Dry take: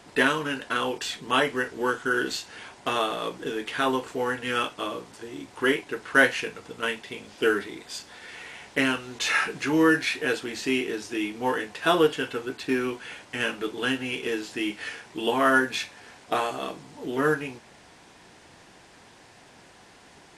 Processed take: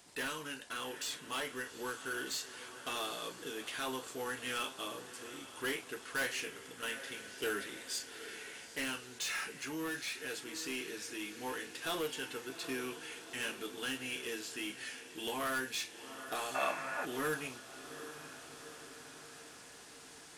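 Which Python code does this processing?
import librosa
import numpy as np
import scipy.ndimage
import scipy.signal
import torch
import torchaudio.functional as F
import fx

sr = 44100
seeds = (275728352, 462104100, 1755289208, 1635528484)

p1 = scipy.signal.lfilter([1.0, -0.8], [1.0], x)
p2 = p1 + fx.echo_diffused(p1, sr, ms=811, feedback_pct=57, wet_db=-15, dry=0)
p3 = 10.0 ** (-32.0 / 20.0) * np.tanh(p2 / 10.0 ** (-32.0 / 20.0))
p4 = fx.rider(p3, sr, range_db=5, speed_s=2.0)
y = fx.spec_box(p4, sr, start_s=16.55, length_s=0.5, low_hz=530.0, high_hz=2700.0, gain_db=12)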